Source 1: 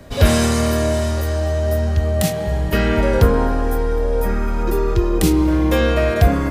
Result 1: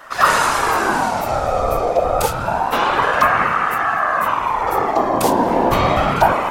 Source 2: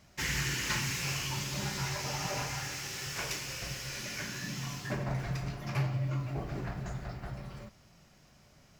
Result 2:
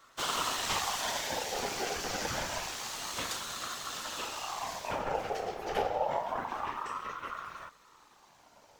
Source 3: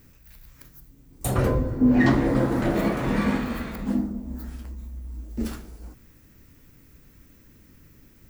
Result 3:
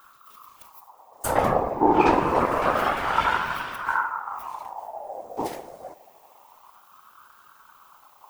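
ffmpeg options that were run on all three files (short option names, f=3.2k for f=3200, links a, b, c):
-af "afftfilt=real='hypot(re,im)*cos(2*PI*random(0))':imag='hypot(re,im)*sin(2*PI*random(1))':win_size=512:overlap=0.75,acontrast=87,aeval=exprs='val(0)*sin(2*PI*920*n/s+920*0.35/0.27*sin(2*PI*0.27*n/s))':c=same,volume=2dB"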